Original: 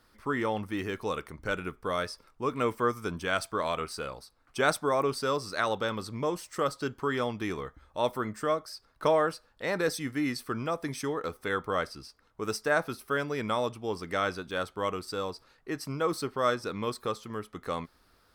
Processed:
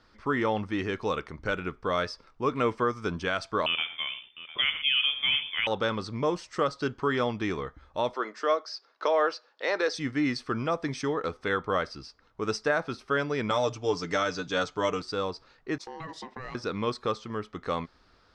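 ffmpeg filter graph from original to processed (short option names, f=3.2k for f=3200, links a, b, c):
-filter_complex "[0:a]asettb=1/sr,asplit=3[a][b][c];[a]atrim=end=3.664[d];[b]atrim=start=3.66:end=5.67,asetpts=PTS-STARTPTS,afade=t=in:d=0.004:c=qsin,afade=t=out:st=2.006:d=0.004:c=qsin,aecho=1:1:72|118|704:0.237|0.168|0.15,atrim=end_sample=88641,lowpass=f=3.1k:t=q:w=0.5098,lowpass=f=3.1k:t=q:w=0.6013,lowpass=f=3.1k:t=q:w=0.9,lowpass=f=3.1k:t=q:w=2.563,afreqshift=-3600[e];[c]atrim=start=5.666[f];[d][e]acrossfade=d=0.004:c1=hsin:c2=qsin[g];[g][f]acrossfade=d=0.004:c1=qsin:c2=hsin,asettb=1/sr,asplit=3[h][i][j];[h]atrim=end=8.144[k];[i]atrim=start=8.14:end=9.95,asetpts=PTS-STARTPTS,afade=t=in:d=0.004:c=qsin,afade=t=out:st=1.806:d=0.004:c=qsin,highpass=f=350:w=0.5412,highpass=f=350:w=1.3066,highshelf=f=7.8k:t=q:w=1.5:g=-11[l];[j]atrim=start=9.946[m];[k][l]acrossfade=d=0.004:c1=hsin:c2=qsin[n];[n][m]acrossfade=d=0.004:c1=qsin:c2=hsin,asettb=1/sr,asplit=3[o][p][q];[o]atrim=end=13.504[r];[p]atrim=start=13.5:end=15.02,asetpts=PTS-STARTPTS,afade=t=in:d=0.004:c=qsin,afade=t=out:st=1.516:d=0.004:c=qsin,lowpass=f=6.9k:t=q:w=4.9,aecho=1:1:6.8:0.68,atrim=end_sample=67032[s];[q]atrim=start=15.016[t];[r][s]acrossfade=d=0.004:c1=hsin:c2=qsin[u];[u][t]acrossfade=d=0.004:c1=qsin:c2=hsin,asettb=1/sr,asplit=3[v][w][x];[v]atrim=end=15.784[y];[w]atrim=start=15.78:end=16.55,asetpts=PTS-STARTPTS,afade=t=in:d=0.004:c=qsin,afade=t=out:st=0.766:d=0.004:c=qsin,agate=range=-33dB:threshold=-47dB:ratio=3:release=100:detection=peak,aeval=exprs='val(0)*sin(2*PI*640*n/s)':c=same,acompressor=threshold=-39dB:ratio=6:attack=3.2:release=140:knee=1:detection=peak[z];[x]atrim=start=16.546[aa];[y][z]acrossfade=d=0.004:c1=hsin:c2=qsin[ab];[ab][aa]acrossfade=d=0.004:c1=qsin:c2=hsin,alimiter=limit=-18dB:level=0:latency=1:release=183,lowpass=f=6.1k:w=0.5412,lowpass=f=6.1k:w=1.3066,volume=3dB"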